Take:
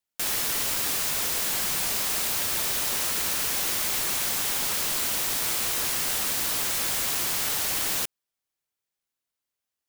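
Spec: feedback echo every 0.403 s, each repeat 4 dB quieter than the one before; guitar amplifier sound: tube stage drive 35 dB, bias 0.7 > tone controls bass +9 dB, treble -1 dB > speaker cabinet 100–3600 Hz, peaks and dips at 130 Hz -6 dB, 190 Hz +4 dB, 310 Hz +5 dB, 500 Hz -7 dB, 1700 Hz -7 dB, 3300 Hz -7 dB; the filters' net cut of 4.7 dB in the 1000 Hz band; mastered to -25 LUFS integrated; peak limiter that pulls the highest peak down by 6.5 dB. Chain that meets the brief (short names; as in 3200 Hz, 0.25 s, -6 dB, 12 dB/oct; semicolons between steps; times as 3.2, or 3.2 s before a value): bell 1000 Hz -5 dB; limiter -20 dBFS; feedback echo 0.403 s, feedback 63%, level -4 dB; tube stage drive 35 dB, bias 0.7; tone controls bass +9 dB, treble -1 dB; speaker cabinet 100–3600 Hz, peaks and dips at 130 Hz -6 dB, 190 Hz +4 dB, 310 Hz +5 dB, 500 Hz -7 dB, 1700 Hz -7 dB, 3300 Hz -7 dB; gain +21 dB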